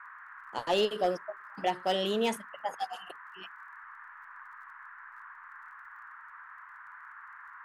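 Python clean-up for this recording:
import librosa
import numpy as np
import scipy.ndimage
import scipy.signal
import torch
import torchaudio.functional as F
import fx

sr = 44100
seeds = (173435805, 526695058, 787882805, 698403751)

y = fx.fix_declip(x, sr, threshold_db=-19.5)
y = fx.fix_declick_ar(y, sr, threshold=6.5)
y = fx.noise_reduce(y, sr, print_start_s=6.2, print_end_s=6.7, reduce_db=27.0)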